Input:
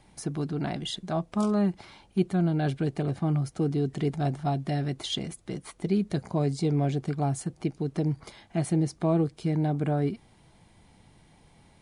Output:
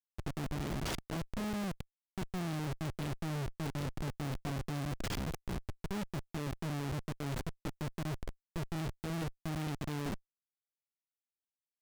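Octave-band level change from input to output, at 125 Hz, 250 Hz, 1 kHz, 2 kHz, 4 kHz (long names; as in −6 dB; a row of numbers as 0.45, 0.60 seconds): −10.5, −12.0, −9.0, −2.0, −8.0 decibels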